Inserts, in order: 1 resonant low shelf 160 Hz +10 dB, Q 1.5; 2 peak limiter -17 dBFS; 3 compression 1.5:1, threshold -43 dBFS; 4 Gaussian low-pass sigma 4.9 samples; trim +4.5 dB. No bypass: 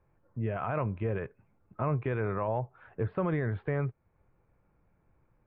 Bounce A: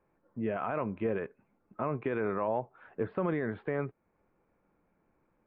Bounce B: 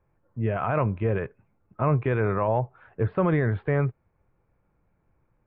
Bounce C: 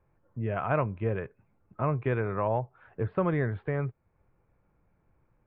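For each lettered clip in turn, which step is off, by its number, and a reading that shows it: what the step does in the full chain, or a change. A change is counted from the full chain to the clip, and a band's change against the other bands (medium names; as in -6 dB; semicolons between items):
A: 1, 125 Hz band -9.0 dB; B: 3, mean gain reduction 6.0 dB; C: 2, mean gain reduction 2.0 dB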